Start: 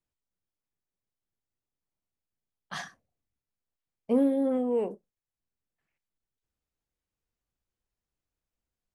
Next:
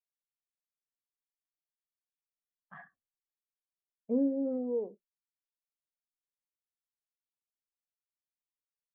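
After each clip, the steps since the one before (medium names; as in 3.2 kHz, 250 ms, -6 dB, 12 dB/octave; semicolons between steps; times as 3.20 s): low-pass 2.2 kHz 24 dB/octave; in parallel at -0.5 dB: compression, threshold -34 dBFS, peak gain reduction 13.5 dB; on the sum: spectral contrast expander 1.5:1; trim -7.5 dB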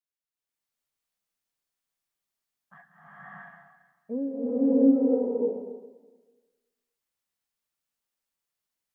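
swelling reverb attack 650 ms, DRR -11.5 dB; trim -2.5 dB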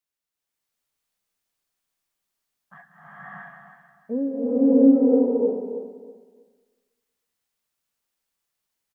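feedback delay 318 ms, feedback 23%, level -11 dB; trim +5 dB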